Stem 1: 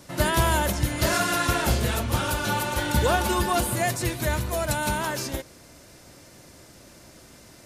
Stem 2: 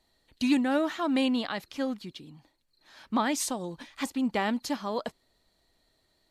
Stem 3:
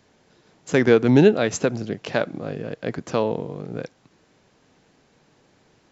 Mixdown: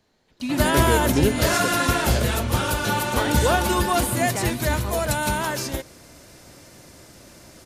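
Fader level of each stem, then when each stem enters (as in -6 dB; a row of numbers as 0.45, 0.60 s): +2.5, -2.0, -8.0 dB; 0.40, 0.00, 0.00 s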